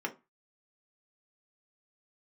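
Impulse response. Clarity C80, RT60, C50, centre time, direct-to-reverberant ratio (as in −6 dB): 24.5 dB, 0.25 s, 16.0 dB, 8 ms, 1.5 dB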